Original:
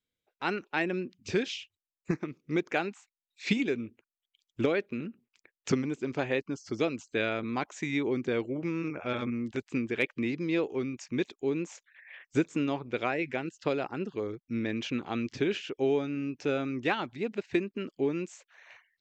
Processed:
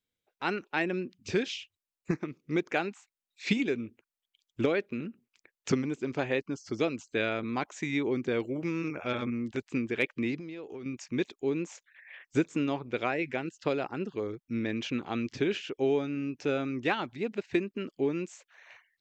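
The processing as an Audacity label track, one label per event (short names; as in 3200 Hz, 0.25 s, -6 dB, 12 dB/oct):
8.400000	9.120000	high shelf 3700 Hz +7 dB
10.350000	10.860000	compressor 16:1, threshold -37 dBFS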